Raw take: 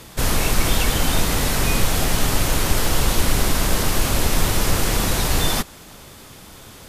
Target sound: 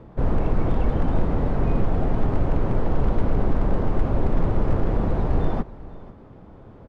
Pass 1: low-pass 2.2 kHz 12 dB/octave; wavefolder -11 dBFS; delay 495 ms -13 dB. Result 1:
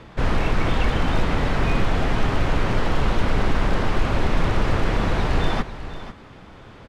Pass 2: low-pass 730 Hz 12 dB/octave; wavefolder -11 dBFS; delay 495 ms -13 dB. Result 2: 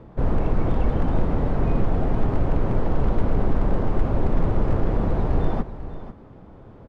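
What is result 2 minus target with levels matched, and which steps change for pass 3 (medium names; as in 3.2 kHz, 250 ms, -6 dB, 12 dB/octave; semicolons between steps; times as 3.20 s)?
echo-to-direct +6 dB
change: delay 495 ms -19 dB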